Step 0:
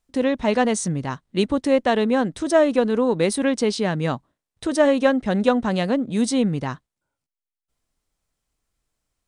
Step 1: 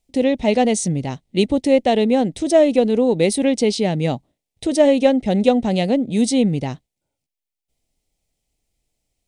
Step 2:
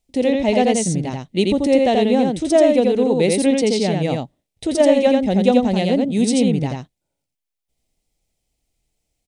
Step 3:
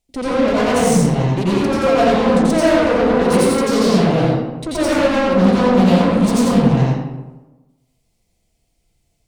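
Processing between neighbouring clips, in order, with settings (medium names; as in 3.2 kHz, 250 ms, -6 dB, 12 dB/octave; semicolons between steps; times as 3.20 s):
high-order bell 1.3 kHz -14 dB 1 oct; trim +3.5 dB
delay 85 ms -3 dB; trim -1 dB
valve stage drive 23 dB, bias 0.6; reverberation RT60 1.1 s, pre-delay 82 ms, DRR -7.5 dB; loudspeaker Doppler distortion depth 0.18 ms; trim +2.5 dB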